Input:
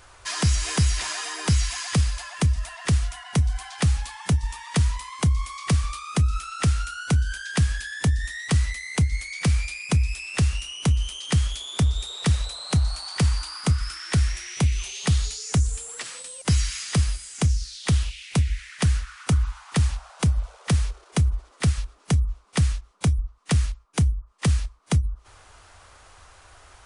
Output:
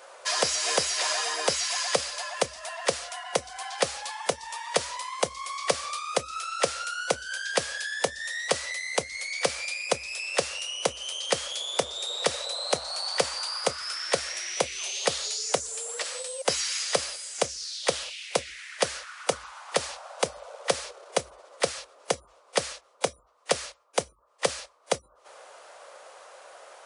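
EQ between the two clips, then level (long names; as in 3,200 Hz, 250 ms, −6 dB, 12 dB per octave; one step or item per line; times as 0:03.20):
high-pass with resonance 540 Hz, resonance Q 4.7
dynamic equaliser 4,900 Hz, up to +4 dB, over −44 dBFS, Q 1.2
0.0 dB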